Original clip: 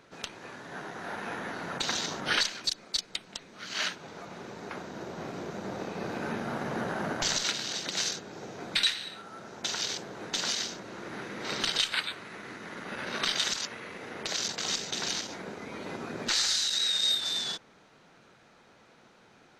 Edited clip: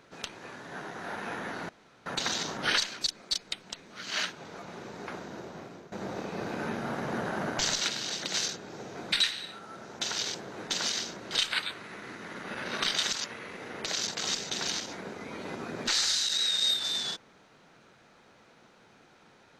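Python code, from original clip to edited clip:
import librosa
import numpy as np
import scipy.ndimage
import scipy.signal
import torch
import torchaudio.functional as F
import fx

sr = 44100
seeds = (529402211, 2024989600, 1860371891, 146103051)

y = fx.edit(x, sr, fx.insert_room_tone(at_s=1.69, length_s=0.37),
    fx.fade_out_to(start_s=4.85, length_s=0.7, floor_db=-15.5),
    fx.cut(start_s=10.94, length_s=0.78), tone=tone)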